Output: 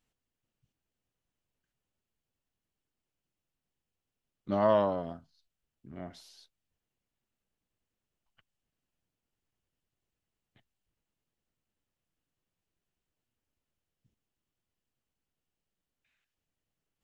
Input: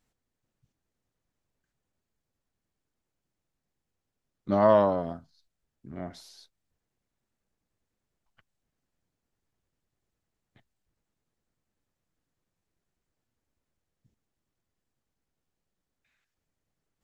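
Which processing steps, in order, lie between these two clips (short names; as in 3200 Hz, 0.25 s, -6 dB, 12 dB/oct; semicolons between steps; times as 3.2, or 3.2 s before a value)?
bell 2900 Hz +7 dB 0.42 oct; gain -5 dB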